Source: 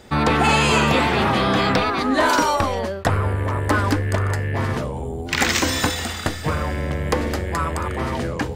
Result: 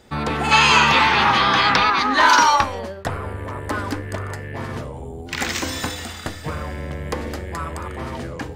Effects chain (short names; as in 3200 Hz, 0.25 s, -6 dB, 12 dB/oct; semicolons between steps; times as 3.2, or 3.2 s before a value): spectral gain 0.52–2.63, 790–6800 Hz +11 dB; de-hum 99.37 Hz, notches 28; gain -5 dB